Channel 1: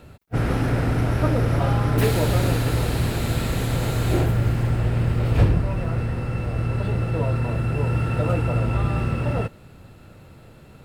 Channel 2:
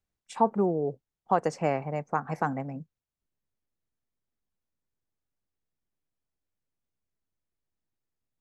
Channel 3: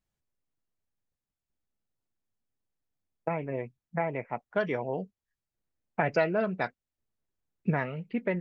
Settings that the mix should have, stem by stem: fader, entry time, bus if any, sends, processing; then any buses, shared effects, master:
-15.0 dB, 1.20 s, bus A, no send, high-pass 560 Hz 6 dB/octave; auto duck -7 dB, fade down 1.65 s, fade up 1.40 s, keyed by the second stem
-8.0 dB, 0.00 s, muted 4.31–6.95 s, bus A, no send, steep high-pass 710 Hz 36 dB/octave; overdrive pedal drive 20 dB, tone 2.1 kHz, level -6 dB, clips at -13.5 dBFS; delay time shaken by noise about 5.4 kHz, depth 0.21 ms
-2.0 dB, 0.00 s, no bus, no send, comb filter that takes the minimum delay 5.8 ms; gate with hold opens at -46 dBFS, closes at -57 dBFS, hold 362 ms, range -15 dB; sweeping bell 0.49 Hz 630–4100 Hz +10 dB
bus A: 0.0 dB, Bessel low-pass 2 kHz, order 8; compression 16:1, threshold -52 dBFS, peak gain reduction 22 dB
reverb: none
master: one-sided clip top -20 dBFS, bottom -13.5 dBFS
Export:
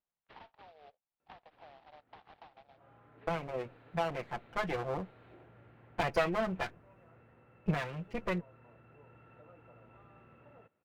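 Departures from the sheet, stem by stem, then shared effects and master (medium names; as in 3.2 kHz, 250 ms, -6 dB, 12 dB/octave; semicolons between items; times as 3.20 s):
stem 1 -15.0 dB -> -26.0 dB; stem 3: missing sweeping bell 0.49 Hz 630–4100 Hz +10 dB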